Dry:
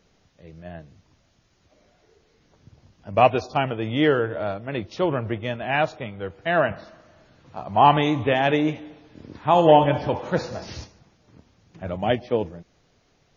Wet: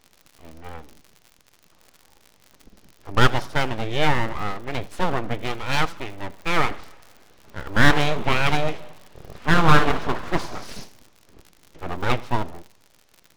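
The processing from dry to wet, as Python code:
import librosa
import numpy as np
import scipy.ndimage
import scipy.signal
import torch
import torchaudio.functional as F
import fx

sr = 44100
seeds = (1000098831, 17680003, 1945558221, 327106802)

y = fx.dmg_crackle(x, sr, seeds[0], per_s=85.0, level_db=-37.0)
y = np.abs(y)
y = fx.echo_warbled(y, sr, ms=80, feedback_pct=37, rate_hz=2.8, cents=123, wet_db=-21)
y = F.gain(torch.from_numpy(y), 2.5).numpy()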